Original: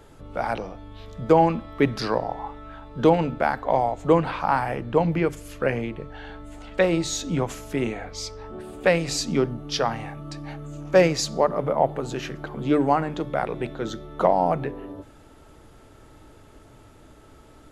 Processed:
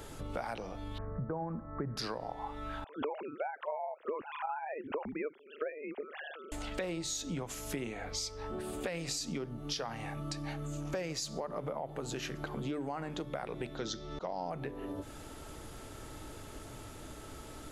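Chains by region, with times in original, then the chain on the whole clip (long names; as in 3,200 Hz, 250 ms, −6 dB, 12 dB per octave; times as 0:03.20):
0:00.98–0:01.97: Butterworth low-pass 1,700 Hz 48 dB per octave + parametric band 140 Hz +8 dB 0.53 octaves
0:02.84–0:06.52: three sine waves on the formant tracks + amplitude modulation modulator 150 Hz, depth 40%
0:13.77–0:14.50: low-pass with resonance 5,300 Hz, resonance Q 3.6 + volume swells 396 ms
whole clip: high-shelf EQ 3,500 Hz +8.5 dB; brickwall limiter −13.5 dBFS; downward compressor 6 to 1, threshold −38 dBFS; level +2 dB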